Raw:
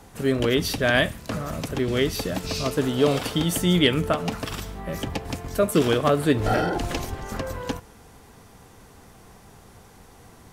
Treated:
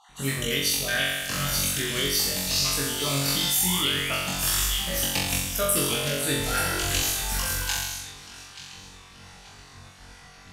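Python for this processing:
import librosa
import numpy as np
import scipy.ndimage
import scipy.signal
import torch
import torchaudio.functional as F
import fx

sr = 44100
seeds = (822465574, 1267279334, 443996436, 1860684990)

p1 = fx.spec_dropout(x, sr, seeds[0], share_pct=25)
p2 = fx.echo_wet_highpass(p1, sr, ms=882, feedback_pct=41, hz=3000.0, wet_db=-10.0)
p3 = fx.spec_paint(p2, sr, seeds[1], shape='rise', start_s=3.56, length_s=0.6, low_hz=710.0, high_hz=2900.0, level_db=-33.0)
p4 = fx.tone_stack(p3, sr, knobs='5-5-5')
p5 = fx.notch(p4, sr, hz=3200.0, q=24.0)
p6 = p5 + fx.room_flutter(p5, sr, wall_m=3.7, rt60_s=0.97, dry=0)
p7 = fx.rider(p6, sr, range_db=5, speed_s=0.5)
p8 = fx.high_shelf(p7, sr, hz=5800.0, db=9.0)
p9 = fx.env_lowpass(p8, sr, base_hz=2300.0, full_db=-32.0)
p10 = fx.env_flatten(p9, sr, amount_pct=50, at=(3.28, 3.85))
y = p10 * 10.0 ** (6.5 / 20.0)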